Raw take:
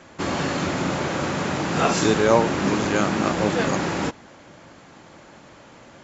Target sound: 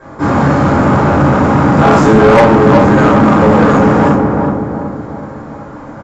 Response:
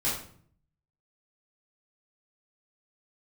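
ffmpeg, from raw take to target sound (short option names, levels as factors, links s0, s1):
-filter_complex "[0:a]highshelf=f=1900:t=q:w=1.5:g=-12,asplit=2[s0][s1];[s1]adelay=375,lowpass=f=1400:p=1,volume=0.596,asplit=2[s2][s3];[s3]adelay=375,lowpass=f=1400:p=1,volume=0.47,asplit=2[s4][s5];[s5]adelay=375,lowpass=f=1400:p=1,volume=0.47,asplit=2[s6][s7];[s7]adelay=375,lowpass=f=1400:p=1,volume=0.47,asplit=2[s8][s9];[s9]adelay=375,lowpass=f=1400:p=1,volume=0.47,asplit=2[s10][s11];[s11]adelay=375,lowpass=f=1400:p=1,volume=0.47[s12];[s0][s2][s4][s6][s8][s10][s12]amix=inputs=7:normalize=0[s13];[1:a]atrim=start_sample=2205[s14];[s13][s14]afir=irnorm=-1:irlink=0,acontrast=82,volume=0.891"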